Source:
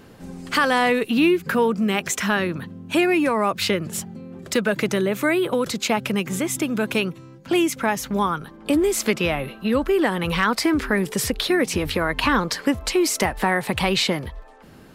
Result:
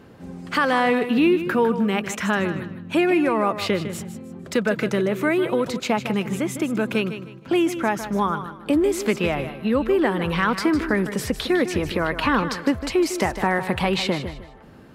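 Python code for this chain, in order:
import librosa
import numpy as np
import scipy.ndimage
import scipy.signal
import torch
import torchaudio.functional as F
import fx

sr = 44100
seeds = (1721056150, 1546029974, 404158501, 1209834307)

p1 = scipy.signal.sosfilt(scipy.signal.butter(2, 41.0, 'highpass', fs=sr, output='sos'), x)
p2 = fx.high_shelf(p1, sr, hz=3500.0, db=-9.5)
y = p2 + fx.echo_feedback(p2, sr, ms=154, feedback_pct=28, wet_db=-11, dry=0)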